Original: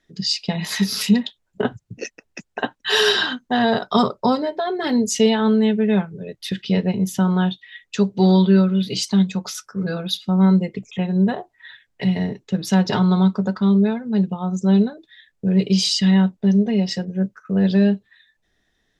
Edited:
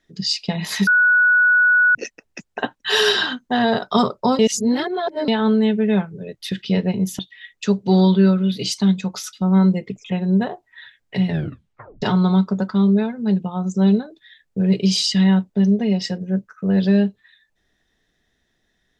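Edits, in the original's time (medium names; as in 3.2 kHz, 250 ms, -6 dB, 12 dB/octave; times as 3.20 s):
0.87–1.95 s: bleep 1.47 kHz -11 dBFS
4.39–5.28 s: reverse
7.19–7.50 s: delete
9.64–10.20 s: delete
12.15 s: tape stop 0.74 s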